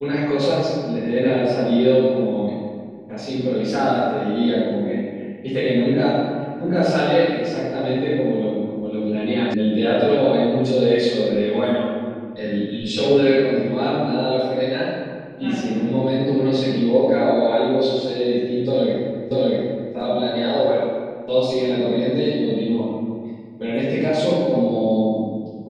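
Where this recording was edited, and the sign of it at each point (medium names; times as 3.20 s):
9.54 s: sound stops dead
19.31 s: repeat of the last 0.64 s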